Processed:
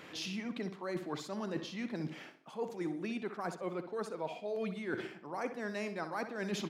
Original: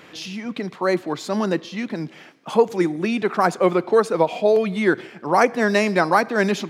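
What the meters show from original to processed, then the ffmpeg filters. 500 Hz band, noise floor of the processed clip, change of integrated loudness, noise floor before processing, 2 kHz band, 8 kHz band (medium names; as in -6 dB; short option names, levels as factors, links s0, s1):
-20.0 dB, -53 dBFS, -19.0 dB, -46 dBFS, -19.0 dB, -14.0 dB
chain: -filter_complex "[0:a]areverse,acompressor=threshold=0.0355:ratio=12,areverse,asplit=2[s0][s1];[s1]adelay=63,lowpass=f=3500:p=1,volume=0.316,asplit=2[s2][s3];[s3]adelay=63,lowpass=f=3500:p=1,volume=0.38,asplit=2[s4][s5];[s5]adelay=63,lowpass=f=3500:p=1,volume=0.38,asplit=2[s6][s7];[s7]adelay=63,lowpass=f=3500:p=1,volume=0.38[s8];[s0][s2][s4][s6][s8]amix=inputs=5:normalize=0,volume=0.501"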